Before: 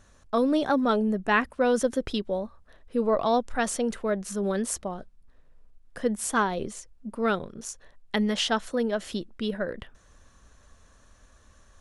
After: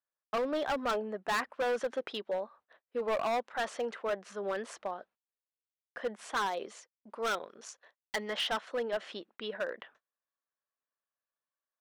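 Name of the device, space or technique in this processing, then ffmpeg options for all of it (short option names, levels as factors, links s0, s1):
walkie-talkie: -filter_complex "[0:a]highpass=590,lowpass=2800,asoftclip=type=hard:threshold=0.0422,agate=range=0.02:threshold=0.00112:ratio=16:detection=peak,asettb=1/sr,asplit=3[s0][s1][s2];[s0]atrim=end=6.464[s3];[s1]atrim=start=6.46:end=8.3,asetpts=PTS-STARTPTS,afade=t=in:d=0.004:c=qsin,afade=t=out:st=1.836:d=0.004:c=qsin,bass=f=250:g=-3,treble=f=4000:g=7[s4];[s2]atrim=start=8.296[s5];[s3][s4]acrossfade=d=0.004:c1=hsin:c2=qsin[s6];[s6][s5]acrossfade=d=0.004:c1=qsin:c2=hsin"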